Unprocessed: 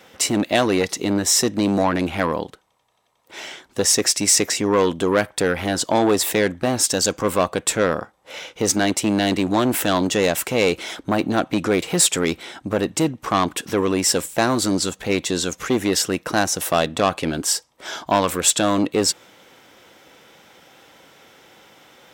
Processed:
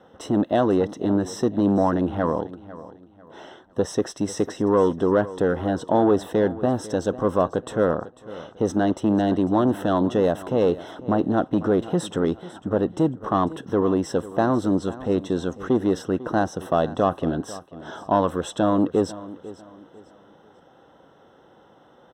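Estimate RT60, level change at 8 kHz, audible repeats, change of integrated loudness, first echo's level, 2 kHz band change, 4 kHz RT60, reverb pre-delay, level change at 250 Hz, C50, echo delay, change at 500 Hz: no reverb audible, −21.5 dB, 2, −3.0 dB, −17.0 dB, −10.5 dB, no reverb audible, no reverb audible, 0.0 dB, no reverb audible, 497 ms, −0.5 dB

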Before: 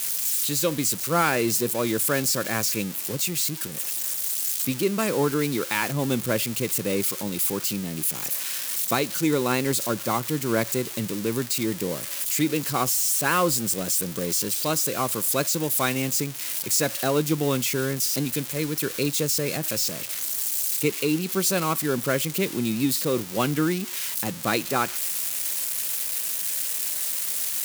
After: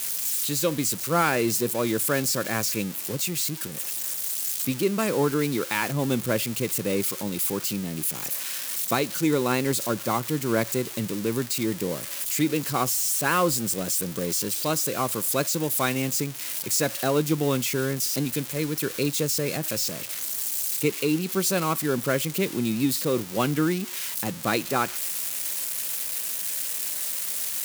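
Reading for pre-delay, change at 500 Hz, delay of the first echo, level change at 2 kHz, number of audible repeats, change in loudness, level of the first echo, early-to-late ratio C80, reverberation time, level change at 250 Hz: no reverb audible, 0.0 dB, no echo audible, −1.0 dB, no echo audible, −1.0 dB, no echo audible, no reverb audible, no reverb audible, 0.0 dB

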